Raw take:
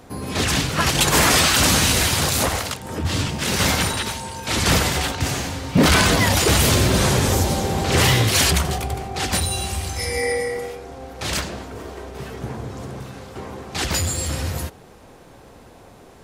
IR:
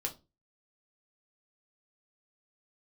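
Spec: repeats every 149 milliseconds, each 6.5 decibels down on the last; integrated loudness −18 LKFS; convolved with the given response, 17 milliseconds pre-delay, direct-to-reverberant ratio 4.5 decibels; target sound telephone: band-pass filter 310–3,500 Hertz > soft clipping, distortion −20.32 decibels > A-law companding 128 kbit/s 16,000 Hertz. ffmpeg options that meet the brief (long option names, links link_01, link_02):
-filter_complex "[0:a]aecho=1:1:149|298|447|596|745|894:0.473|0.222|0.105|0.0491|0.0231|0.0109,asplit=2[link_01][link_02];[1:a]atrim=start_sample=2205,adelay=17[link_03];[link_02][link_03]afir=irnorm=-1:irlink=0,volume=-6dB[link_04];[link_01][link_04]amix=inputs=2:normalize=0,highpass=310,lowpass=3500,asoftclip=threshold=-10dB,volume=3.5dB" -ar 16000 -c:a pcm_alaw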